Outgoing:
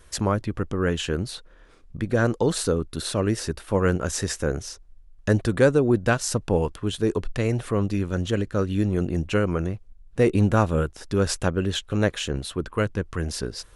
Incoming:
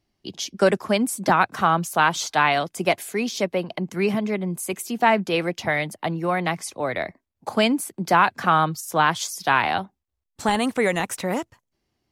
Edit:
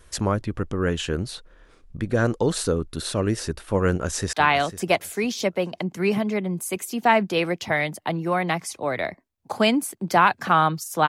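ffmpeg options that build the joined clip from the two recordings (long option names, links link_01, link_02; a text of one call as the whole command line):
ffmpeg -i cue0.wav -i cue1.wav -filter_complex "[0:a]apad=whole_dur=11.08,atrim=end=11.08,atrim=end=4.332[link_01];[1:a]atrim=start=2.298:end=9.05[link_02];[link_01][link_02]acrossfade=duration=0.004:curve1=hsin:curve2=hsin,asplit=2[link_03][link_04];[link_04]afade=type=in:start_time=3.89:duration=0.01,afade=type=out:start_time=4.33:duration=0.01,aecho=0:1:500|1000|1500:0.199526|0.0498816|0.0124704[link_05];[link_03][link_05]amix=inputs=2:normalize=0" out.wav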